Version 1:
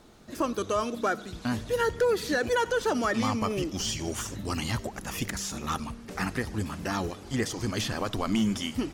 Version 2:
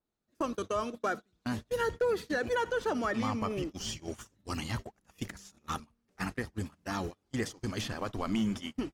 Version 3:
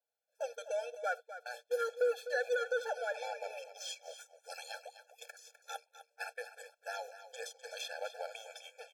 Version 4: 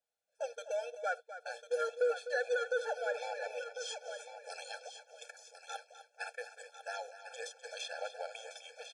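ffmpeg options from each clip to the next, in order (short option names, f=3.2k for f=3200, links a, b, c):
-af "agate=range=-29dB:threshold=-31dB:ratio=16:detection=peak,adynamicequalizer=threshold=0.00501:dfrequency=3600:dqfactor=0.7:tfrequency=3600:tqfactor=0.7:attack=5:release=100:ratio=0.375:range=3.5:mode=cutabove:tftype=highshelf,volume=-4.5dB"
-af "aecho=1:1:253:0.237,afftfilt=real='re*eq(mod(floor(b*sr/1024/450),2),1)':imag='im*eq(mod(floor(b*sr/1024/450),2),1)':win_size=1024:overlap=0.75,volume=-1dB"
-af "aecho=1:1:1049|2098:0.316|0.0506,aresample=22050,aresample=44100"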